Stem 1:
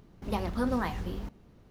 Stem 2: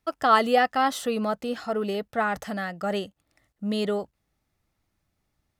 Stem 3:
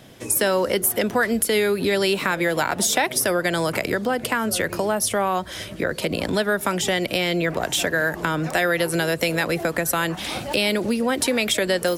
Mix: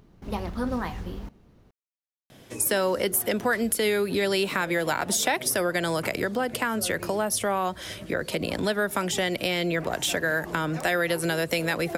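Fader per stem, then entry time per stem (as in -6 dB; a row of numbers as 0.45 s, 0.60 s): +0.5 dB, mute, -4.0 dB; 0.00 s, mute, 2.30 s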